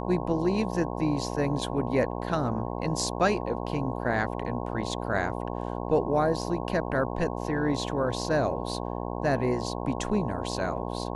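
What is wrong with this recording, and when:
mains buzz 60 Hz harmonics 18 −33 dBFS

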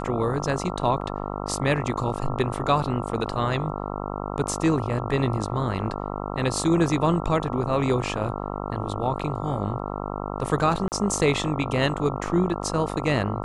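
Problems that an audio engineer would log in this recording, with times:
mains buzz 50 Hz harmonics 27 −31 dBFS
0:10.88–0:10.92: drop-out 39 ms

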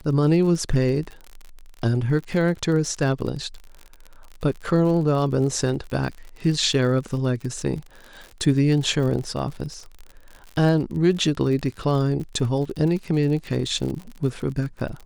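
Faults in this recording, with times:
surface crackle 55 per second −31 dBFS

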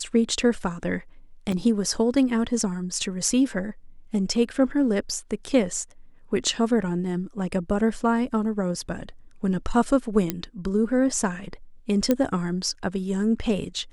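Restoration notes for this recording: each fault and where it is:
0:01.52: drop-out 3.6 ms
0:10.30: click −9 dBFS
0:12.11: click −8 dBFS

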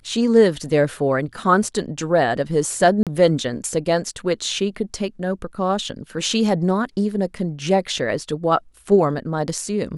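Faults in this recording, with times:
0:03.03–0:03.07: drop-out 37 ms

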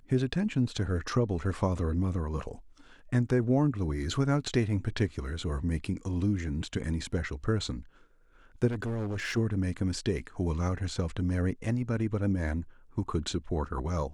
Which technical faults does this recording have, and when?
0:08.67–0:09.38: clipping −29.5 dBFS

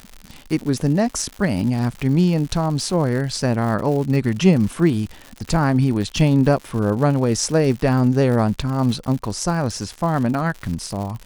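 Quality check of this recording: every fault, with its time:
surface crackle 130 per second −27 dBFS

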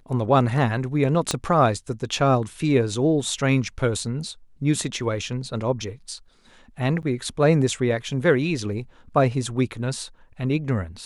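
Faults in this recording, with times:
0:01.31: click −8 dBFS
0:07.02–0:07.03: drop-out 9.2 ms

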